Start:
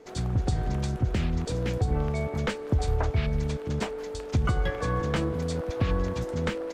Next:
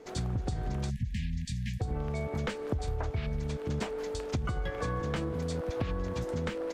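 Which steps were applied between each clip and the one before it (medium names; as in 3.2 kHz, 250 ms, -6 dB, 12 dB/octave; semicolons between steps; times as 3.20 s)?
compression, threshold -29 dBFS, peak gain reduction 9.5 dB; spectral selection erased 0.90–1.81 s, 250–1600 Hz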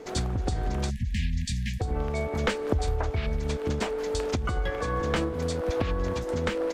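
dynamic bell 140 Hz, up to -8 dB, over -48 dBFS, Q 1.6; random flutter of the level, depth 50%; trim +9 dB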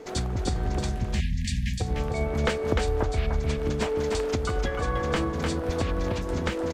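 delay 301 ms -4 dB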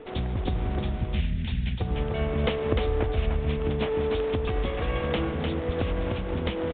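comb filter that takes the minimum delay 0.32 ms; on a send at -13 dB: reverberation RT60 1.1 s, pre-delay 75 ms; on the sum: resampled via 8 kHz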